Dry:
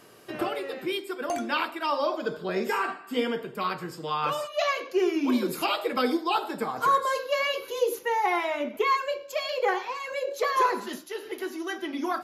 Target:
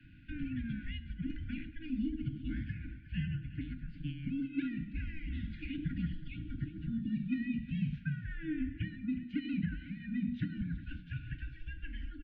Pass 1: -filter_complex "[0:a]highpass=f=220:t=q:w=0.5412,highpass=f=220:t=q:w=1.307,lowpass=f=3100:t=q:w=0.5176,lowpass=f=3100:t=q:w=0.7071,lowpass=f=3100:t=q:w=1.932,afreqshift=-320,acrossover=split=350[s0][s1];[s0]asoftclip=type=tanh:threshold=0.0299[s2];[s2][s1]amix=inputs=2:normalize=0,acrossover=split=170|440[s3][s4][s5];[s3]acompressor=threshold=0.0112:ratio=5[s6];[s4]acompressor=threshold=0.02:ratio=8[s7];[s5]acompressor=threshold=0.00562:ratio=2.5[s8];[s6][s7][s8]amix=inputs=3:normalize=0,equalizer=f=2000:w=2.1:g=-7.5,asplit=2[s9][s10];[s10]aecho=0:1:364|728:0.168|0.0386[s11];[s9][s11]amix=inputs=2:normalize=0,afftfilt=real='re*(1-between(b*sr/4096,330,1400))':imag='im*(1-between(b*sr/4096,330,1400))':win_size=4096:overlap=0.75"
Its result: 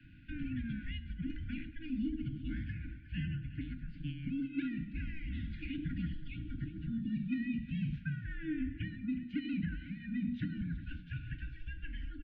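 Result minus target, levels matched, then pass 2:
saturation: distortion +10 dB
-filter_complex "[0:a]highpass=f=220:t=q:w=0.5412,highpass=f=220:t=q:w=1.307,lowpass=f=3100:t=q:w=0.5176,lowpass=f=3100:t=q:w=0.7071,lowpass=f=3100:t=q:w=1.932,afreqshift=-320,acrossover=split=350[s0][s1];[s0]asoftclip=type=tanh:threshold=0.1[s2];[s2][s1]amix=inputs=2:normalize=0,acrossover=split=170|440[s3][s4][s5];[s3]acompressor=threshold=0.0112:ratio=5[s6];[s4]acompressor=threshold=0.02:ratio=8[s7];[s5]acompressor=threshold=0.00562:ratio=2.5[s8];[s6][s7][s8]amix=inputs=3:normalize=0,equalizer=f=2000:w=2.1:g=-7.5,asplit=2[s9][s10];[s10]aecho=0:1:364|728:0.168|0.0386[s11];[s9][s11]amix=inputs=2:normalize=0,afftfilt=real='re*(1-between(b*sr/4096,330,1400))':imag='im*(1-between(b*sr/4096,330,1400))':win_size=4096:overlap=0.75"

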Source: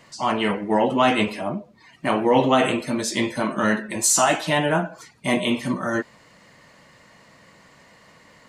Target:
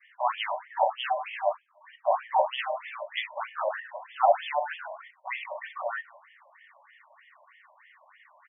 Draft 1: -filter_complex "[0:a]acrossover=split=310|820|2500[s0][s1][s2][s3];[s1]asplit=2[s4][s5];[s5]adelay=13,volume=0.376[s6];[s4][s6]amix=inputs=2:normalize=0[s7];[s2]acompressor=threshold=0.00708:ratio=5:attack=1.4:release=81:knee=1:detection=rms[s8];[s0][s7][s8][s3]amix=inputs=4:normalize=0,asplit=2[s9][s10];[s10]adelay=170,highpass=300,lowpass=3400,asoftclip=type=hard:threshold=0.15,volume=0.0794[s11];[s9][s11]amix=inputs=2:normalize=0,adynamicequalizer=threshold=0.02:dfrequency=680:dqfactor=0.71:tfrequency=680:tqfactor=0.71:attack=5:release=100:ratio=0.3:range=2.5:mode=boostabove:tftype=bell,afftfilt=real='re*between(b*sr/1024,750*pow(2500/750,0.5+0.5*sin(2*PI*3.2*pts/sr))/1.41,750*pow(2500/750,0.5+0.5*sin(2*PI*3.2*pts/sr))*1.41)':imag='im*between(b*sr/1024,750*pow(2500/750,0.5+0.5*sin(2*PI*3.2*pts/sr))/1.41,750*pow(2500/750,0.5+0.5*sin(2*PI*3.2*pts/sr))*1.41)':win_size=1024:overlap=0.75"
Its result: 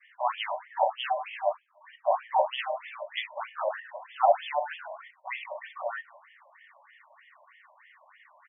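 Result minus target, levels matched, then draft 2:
compression: peak gain reduction +6 dB
-filter_complex "[0:a]acrossover=split=310|820|2500[s0][s1][s2][s3];[s1]asplit=2[s4][s5];[s5]adelay=13,volume=0.376[s6];[s4][s6]amix=inputs=2:normalize=0[s7];[s2]acompressor=threshold=0.0168:ratio=5:attack=1.4:release=81:knee=1:detection=rms[s8];[s0][s7][s8][s3]amix=inputs=4:normalize=0,asplit=2[s9][s10];[s10]adelay=170,highpass=300,lowpass=3400,asoftclip=type=hard:threshold=0.15,volume=0.0794[s11];[s9][s11]amix=inputs=2:normalize=0,adynamicequalizer=threshold=0.02:dfrequency=680:dqfactor=0.71:tfrequency=680:tqfactor=0.71:attack=5:release=100:ratio=0.3:range=2.5:mode=boostabove:tftype=bell,afftfilt=real='re*between(b*sr/1024,750*pow(2500/750,0.5+0.5*sin(2*PI*3.2*pts/sr))/1.41,750*pow(2500/750,0.5+0.5*sin(2*PI*3.2*pts/sr))*1.41)':imag='im*between(b*sr/1024,750*pow(2500/750,0.5+0.5*sin(2*PI*3.2*pts/sr))/1.41,750*pow(2500/750,0.5+0.5*sin(2*PI*3.2*pts/sr))*1.41)':win_size=1024:overlap=0.75"

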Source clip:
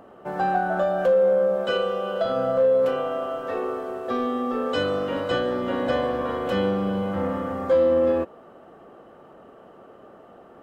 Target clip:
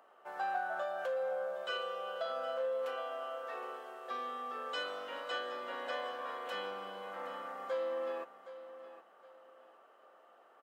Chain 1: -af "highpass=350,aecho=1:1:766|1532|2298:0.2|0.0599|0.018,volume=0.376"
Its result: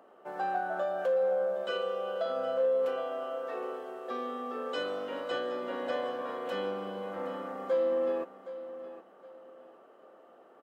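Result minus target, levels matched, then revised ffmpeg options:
250 Hz band +8.0 dB
-af "highpass=860,aecho=1:1:766|1532|2298:0.2|0.0599|0.018,volume=0.376"

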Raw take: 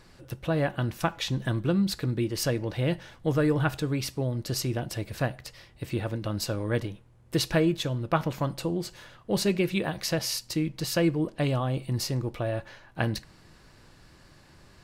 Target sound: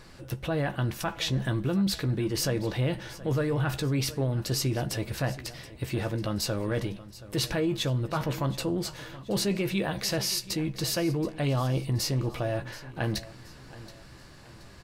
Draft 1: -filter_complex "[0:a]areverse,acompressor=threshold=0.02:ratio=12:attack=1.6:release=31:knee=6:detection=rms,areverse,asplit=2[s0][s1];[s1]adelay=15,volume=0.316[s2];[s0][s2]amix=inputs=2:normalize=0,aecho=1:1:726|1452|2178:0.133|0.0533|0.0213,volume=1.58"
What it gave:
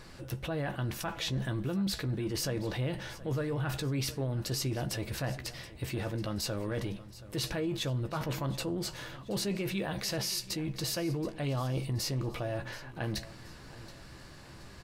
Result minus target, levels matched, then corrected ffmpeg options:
compression: peak gain reduction +6 dB
-filter_complex "[0:a]areverse,acompressor=threshold=0.0422:ratio=12:attack=1.6:release=31:knee=6:detection=rms,areverse,asplit=2[s0][s1];[s1]adelay=15,volume=0.316[s2];[s0][s2]amix=inputs=2:normalize=0,aecho=1:1:726|1452|2178:0.133|0.0533|0.0213,volume=1.58"

